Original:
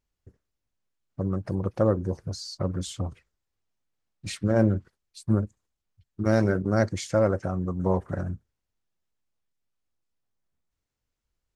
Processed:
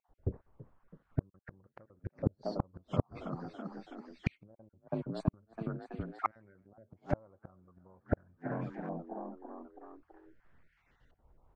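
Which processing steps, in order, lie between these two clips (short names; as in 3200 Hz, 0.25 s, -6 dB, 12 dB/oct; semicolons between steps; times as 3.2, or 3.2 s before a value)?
random spectral dropouts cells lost 25%; compressor 2.5:1, threshold -40 dBFS, peak gain reduction 16 dB; frequency-shifting echo 0.328 s, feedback 63%, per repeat +38 Hz, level -18 dB; LFO low-pass saw up 0.45 Hz 750–2400 Hz; flipped gate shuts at -32 dBFS, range -41 dB; gain +17 dB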